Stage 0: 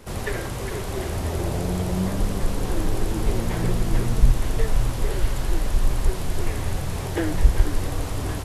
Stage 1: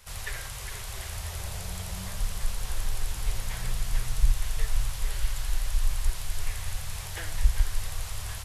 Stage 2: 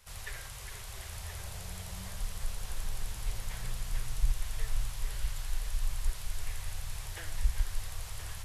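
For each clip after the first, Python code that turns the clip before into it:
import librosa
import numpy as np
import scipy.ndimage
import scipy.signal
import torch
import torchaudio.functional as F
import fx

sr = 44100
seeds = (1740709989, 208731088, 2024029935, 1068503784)

y1 = fx.tone_stack(x, sr, knobs='10-0-10')
y2 = y1 + 10.0 ** (-10.0 / 20.0) * np.pad(y1, (int(1025 * sr / 1000.0), 0))[:len(y1)]
y2 = y2 * 10.0 ** (-6.5 / 20.0)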